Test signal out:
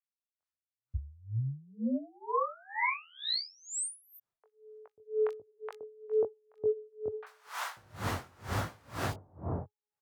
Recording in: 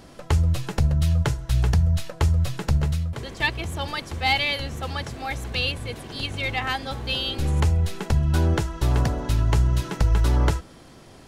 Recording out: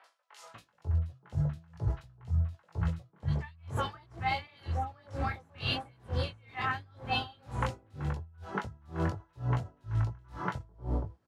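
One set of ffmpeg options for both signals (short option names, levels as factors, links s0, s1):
-filter_complex "[0:a]highpass=f=66:w=0.5412,highpass=f=66:w=1.3066,bandreject=f=416.1:t=h:w=4,bandreject=f=832.2:t=h:w=4,bandreject=f=1248.3:t=h:w=4,bandreject=f=1664.4:t=h:w=4,bandreject=f=2080.5:t=h:w=4,flanger=delay=17.5:depth=5.8:speed=0.84,equalizer=f=100:t=o:w=0.89:g=9.5,acrossover=split=810|2600[s0][s1][s2];[s2]adelay=40[s3];[s0]adelay=540[s4];[s4][s1][s3]amix=inputs=3:normalize=0,acrossover=split=750|1500[s5][s6][s7];[s6]dynaudnorm=f=210:g=7:m=3.55[s8];[s5][s8][s7]amix=inputs=3:normalize=0,aemphasis=mode=reproduction:type=cd,areverse,acompressor=threshold=0.0398:ratio=6,areverse,aeval=exprs='val(0)*pow(10,-31*(0.5-0.5*cos(2*PI*2.1*n/s))/20)':c=same,volume=1.41"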